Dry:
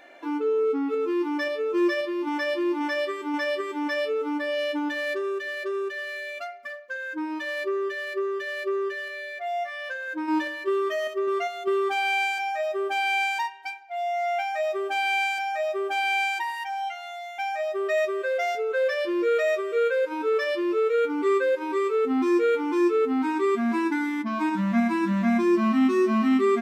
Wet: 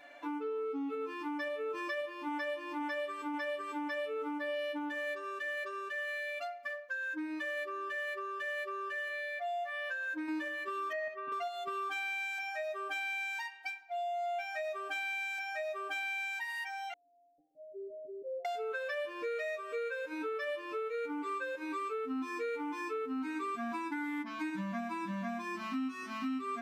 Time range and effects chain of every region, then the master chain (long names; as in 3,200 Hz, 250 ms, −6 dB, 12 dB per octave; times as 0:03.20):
0:10.92–0:11.32: band-pass filter 120–2,300 Hz + comb filter 1.2 ms, depth 49%
0:16.93–0:18.45: Butterworth low-pass 530 Hz 72 dB per octave + parametric band 370 Hz +4.5 dB 0.43 octaves + comb filter 6 ms, depth 34%
whole clip: parametric band 380 Hz −14 dB 0.38 octaves; comb filter 6.9 ms, depth 97%; downward compressor, threshold −28 dBFS; level −6.5 dB